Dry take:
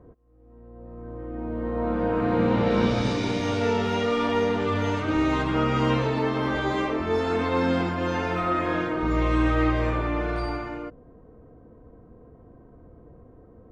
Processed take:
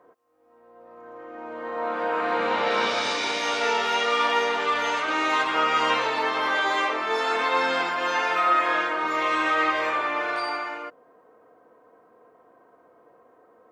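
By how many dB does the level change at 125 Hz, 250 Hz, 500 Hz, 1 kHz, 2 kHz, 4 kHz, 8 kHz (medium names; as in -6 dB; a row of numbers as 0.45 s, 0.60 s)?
under -20 dB, -11.0 dB, -2.5 dB, +5.5 dB, +7.5 dB, +7.5 dB, no reading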